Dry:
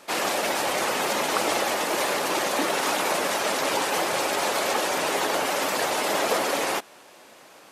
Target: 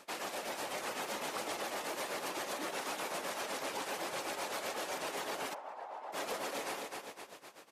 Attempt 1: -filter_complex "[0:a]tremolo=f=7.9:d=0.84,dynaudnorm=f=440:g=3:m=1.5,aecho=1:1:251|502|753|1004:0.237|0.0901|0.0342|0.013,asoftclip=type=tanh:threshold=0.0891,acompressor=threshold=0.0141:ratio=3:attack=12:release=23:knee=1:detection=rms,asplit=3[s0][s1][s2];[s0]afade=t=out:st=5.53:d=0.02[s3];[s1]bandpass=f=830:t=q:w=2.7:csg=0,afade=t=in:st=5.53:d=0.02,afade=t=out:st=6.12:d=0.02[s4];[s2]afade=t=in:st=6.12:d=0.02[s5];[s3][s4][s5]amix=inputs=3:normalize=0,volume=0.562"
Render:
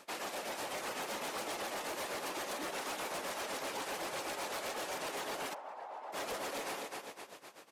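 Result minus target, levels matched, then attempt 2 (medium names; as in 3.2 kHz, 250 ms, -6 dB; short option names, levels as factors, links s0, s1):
saturation: distortion +17 dB
-filter_complex "[0:a]tremolo=f=7.9:d=0.84,dynaudnorm=f=440:g=3:m=1.5,aecho=1:1:251|502|753|1004:0.237|0.0901|0.0342|0.013,asoftclip=type=tanh:threshold=0.355,acompressor=threshold=0.0141:ratio=3:attack=12:release=23:knee=1:detection=rms,asplit=3[s0][s1][s2];[s0]afade=t=out:st=5.53:d=0.02[s3];[s1]bandpass=f=830:t=q:w=2.7:csg=0,afade=t=in:st=5.53:d=0.02,afade=t=out:st=6.12:d=0.02[s4];[s2]afade=t=in:st=6.12:d=0.02[s5];[s3][s4][s5]amix=inputs=3:normalize=0,volume=0.562"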